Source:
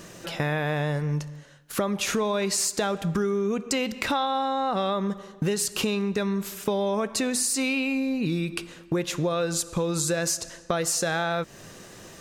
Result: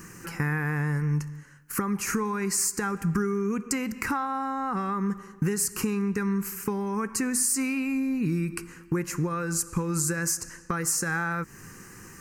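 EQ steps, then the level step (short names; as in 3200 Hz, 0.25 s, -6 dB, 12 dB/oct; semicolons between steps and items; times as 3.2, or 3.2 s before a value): high shelf 11000 Hz +4 dB; dynamic EQ 3000 Hz, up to -5 dB, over -42 dBFS, Q 1.8; fixed phaser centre 1500 Hz, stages 4; +2.0 dB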